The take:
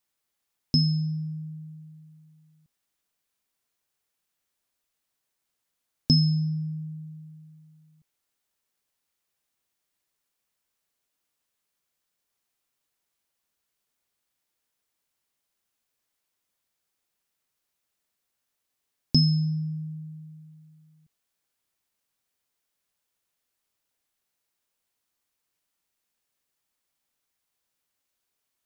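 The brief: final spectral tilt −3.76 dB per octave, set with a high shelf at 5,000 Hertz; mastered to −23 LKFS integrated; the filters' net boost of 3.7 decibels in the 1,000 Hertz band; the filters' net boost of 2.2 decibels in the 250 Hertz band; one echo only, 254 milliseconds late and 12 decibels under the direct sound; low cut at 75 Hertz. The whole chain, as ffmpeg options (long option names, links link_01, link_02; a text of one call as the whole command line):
ffmpeg -i in.wav -af "highpass=75,equalizer=frequency=250:width_type=o:gain=4.5,equalizer=frequency=1000:width_type=o:gain=4.5,highshelf=frequency=5000:gain=8,aecho=1:1:254:0.251" out.wav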